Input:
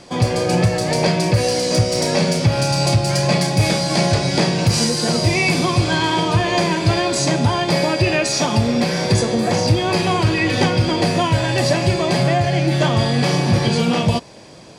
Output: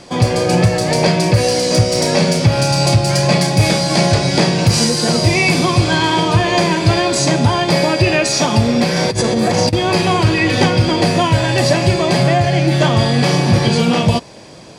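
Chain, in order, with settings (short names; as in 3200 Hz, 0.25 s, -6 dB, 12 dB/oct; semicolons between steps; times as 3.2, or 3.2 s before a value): 8.96–9.73 negative-ratio compressor -18 dBFS, ratio -0.5; gain +3.5 dB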